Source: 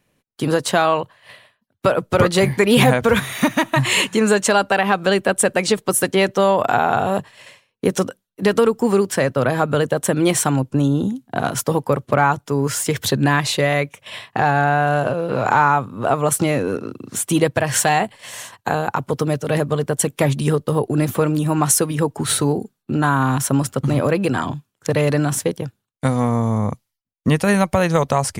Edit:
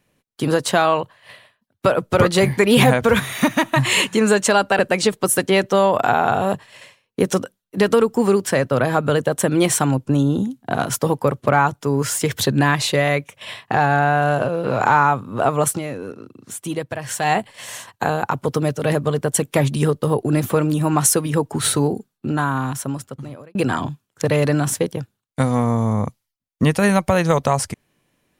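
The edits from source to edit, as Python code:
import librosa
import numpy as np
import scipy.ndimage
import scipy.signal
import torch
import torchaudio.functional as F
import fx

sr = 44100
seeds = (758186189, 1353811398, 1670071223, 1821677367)

y = fx.edit(x, sr, fx.cut(start_s=4.79, length_s=0.65),
    fx.fade_down_up(start_s=16.31, length_s=1.66, db=-9.0, fade_s=0.14),
    fx.fade_out_span(start_s=22.57, length_s=1.63), tone=tone)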